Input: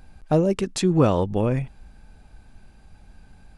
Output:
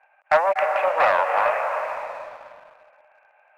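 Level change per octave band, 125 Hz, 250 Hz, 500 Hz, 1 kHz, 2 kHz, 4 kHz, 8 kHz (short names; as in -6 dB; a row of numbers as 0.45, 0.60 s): under -30 dB, under -25 dB, +1.5 dB, +11.5 dB, +16.0 dB, -3.5 dB, under -15 dB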